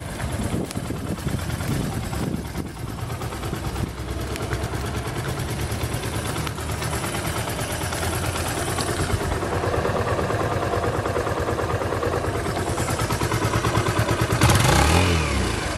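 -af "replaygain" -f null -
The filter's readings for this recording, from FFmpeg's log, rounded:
track_gain = +5.7 dB
track_peak = 0.471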